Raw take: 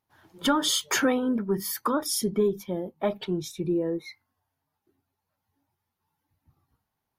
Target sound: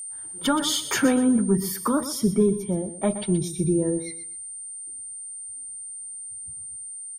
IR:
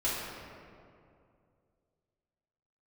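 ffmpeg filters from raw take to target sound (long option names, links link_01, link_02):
-filter_complex "[0:a]aeval=exprs='val(0)+0.0224*sin(2*PI*8900*n/s)':channel_layout=same,aecho=1:1:123|246|369:0.251|0.0578|0.0133,acrossover=split=240[link_01][link_02];[link_01]dynaudnorm=framelen=450:gausssize=3:maxgain=10dB[link_03];[link_03][link_02]amix=inputs=2:normalize=0,asettb=1/sr,asplit=3[link_04][link_05][link_06];[link_04]atrim=end=2.054[link_07];[link_05]atrim=start=2.05:end=3.02,asetpts=PTS-STARTPTS,afade=type=in:duration=0.004:curve=qsin,afade=type=out:start_time=0.966:duration=0.004:curve=qsin,equalizer=frequency=13000:width_type=o:width=2.7:gain=-4[link_08];[link_06]atrim=start=3.016[link_09];[link_07][link_08]acrossfade=duration=0.004:curve1=hsin:curve2=qsin[link_10];[link_10][link_09]acrossfade=duration=0.004:curve1=qsin:curve2=hsin"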